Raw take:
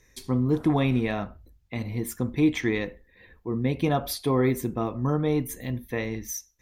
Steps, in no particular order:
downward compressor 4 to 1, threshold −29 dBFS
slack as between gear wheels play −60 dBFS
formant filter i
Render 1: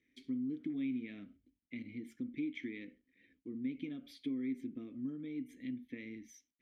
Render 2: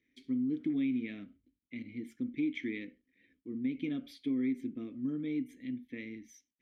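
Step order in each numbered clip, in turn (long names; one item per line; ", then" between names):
slack as between gear wheels, then downward compressor, then formant filter
slack as between gear wheels, then formant filter, then downward compressor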